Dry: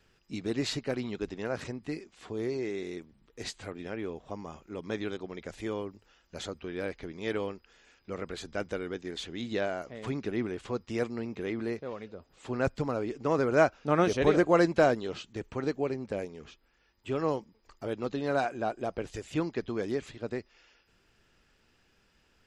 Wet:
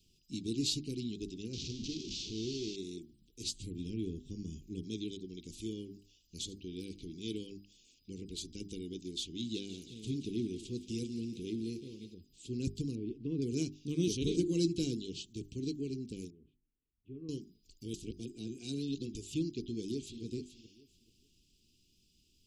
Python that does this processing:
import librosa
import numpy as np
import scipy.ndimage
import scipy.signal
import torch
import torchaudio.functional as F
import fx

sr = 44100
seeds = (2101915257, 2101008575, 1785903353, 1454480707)

y = fx.delta_mod(x, sr, bps=32000, step_db=-32.5, at=(1.53, 2.76))
y = fx.low_shelf(y, sr, hz=210.0, db=10.0, at=(3.52, 4.83))
y = fx.echo_single(y, sr, ms=77, db=-20.0, at=(5.71, 7.52), fade=0.02)
y = fx.echo_thinned(y, sr, ms=175, feedback_pct=70, hz=420.0, wet_db=-12.0, at=(9.53, 12.13), fade=0.02)
y = fx.air_absorb(y, sr, metres=430.0, at=(12.95, 13.42))
y = fx.ladder_lowpass(y, sr, hz=1500.0, resonance_pct=50, at=(16.3, 17.29))
y = fx.echo_throw(y, sr, start_s=19.66, length_s=0.57, ms=430, feedback_pct=20, wet_db=-10.5)
y = fx.edit(y, sr, fx.reverse_span(start_s=17.94, length_s=1.21), tone=tone)
y = scipy.signal.sosfilt(scipy.signal.cheby2(4, 40, [570.0, 1900.0], 'bandstop', fs=sr, output='sos'), y)
y = fx.high_shelf(y, sr, hz=4900.0, db=7.0)
y = fx.hum_notches(y, sr, base_hz=50, count=8)
y = y * librosa.db_to_amplitude(-1.5)